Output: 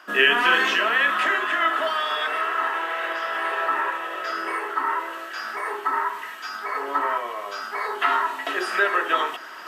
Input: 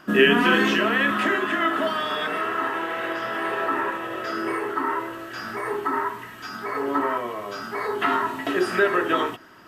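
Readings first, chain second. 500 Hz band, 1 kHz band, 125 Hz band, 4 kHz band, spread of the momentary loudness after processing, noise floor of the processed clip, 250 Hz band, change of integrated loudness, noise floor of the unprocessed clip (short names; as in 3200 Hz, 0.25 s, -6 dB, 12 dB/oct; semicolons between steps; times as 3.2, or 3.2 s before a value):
-5.0 dB, +2.0 dB, under -15 dB, +2.0 dB, 11 LU, -36 dBFS, -12.0 dB, +0.5 dB, -41 dBFS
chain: HPF 680 Hz 12 dB/oct; high shelf 10000 Hz -5.5 dB; reverse; upward compressor, threshold -31 dBFS; reverse; gain +2.5 dB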